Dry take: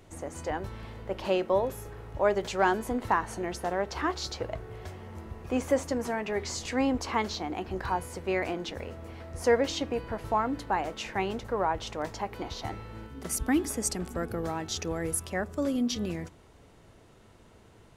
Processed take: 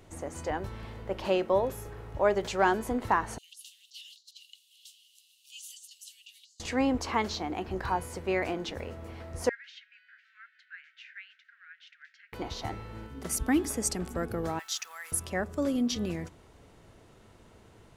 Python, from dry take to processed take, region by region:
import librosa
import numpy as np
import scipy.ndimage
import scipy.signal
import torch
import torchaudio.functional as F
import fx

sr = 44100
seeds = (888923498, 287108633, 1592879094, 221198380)

y = fx.chain(x, sr, fx.cheby_ripple_highpass(hz=2800.0, ripple_db=3),
    fx.over_compress(threshold_db=-49.0, ratio=-0.5), at=(3.38, 6.6))
y = fx.chain(y, sr, fx.steep_highpass(hz=1500.0, slope=96),
    fx.spacing_loss(db_at_10k=41), at=(9.49, 12.33))
y = fx.chain(y, sr, fx.highpass(hz=1100.0, slope=24),
    fx.peak_eq(hz=13000.0, db=10.0, octaves=0.46),
    fx.quant_dither(seeds[0], bits=10, dither='none'), at=(14.59, 15.12))